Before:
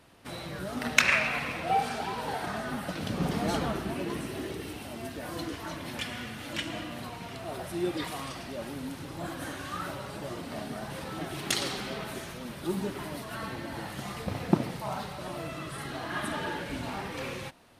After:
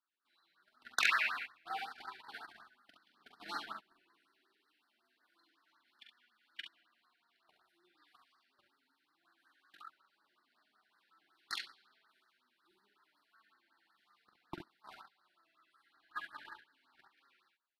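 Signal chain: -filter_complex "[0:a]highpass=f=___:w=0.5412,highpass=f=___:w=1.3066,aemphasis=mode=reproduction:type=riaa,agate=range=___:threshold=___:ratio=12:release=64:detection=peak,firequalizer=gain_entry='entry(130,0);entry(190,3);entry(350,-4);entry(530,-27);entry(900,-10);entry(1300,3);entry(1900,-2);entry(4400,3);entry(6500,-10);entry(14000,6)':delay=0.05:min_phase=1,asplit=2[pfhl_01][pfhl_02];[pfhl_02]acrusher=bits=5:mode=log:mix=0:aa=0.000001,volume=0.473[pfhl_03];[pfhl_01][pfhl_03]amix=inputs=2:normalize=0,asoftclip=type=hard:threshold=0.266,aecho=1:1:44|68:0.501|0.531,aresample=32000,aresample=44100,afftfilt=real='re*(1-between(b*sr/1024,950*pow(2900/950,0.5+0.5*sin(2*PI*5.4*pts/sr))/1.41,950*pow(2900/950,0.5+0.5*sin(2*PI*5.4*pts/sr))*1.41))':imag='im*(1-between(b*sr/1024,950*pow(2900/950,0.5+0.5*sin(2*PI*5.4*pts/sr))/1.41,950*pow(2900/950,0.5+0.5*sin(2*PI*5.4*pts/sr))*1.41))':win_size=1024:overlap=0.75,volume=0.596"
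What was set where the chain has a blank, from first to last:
600, 600, 0.0501, 0.0178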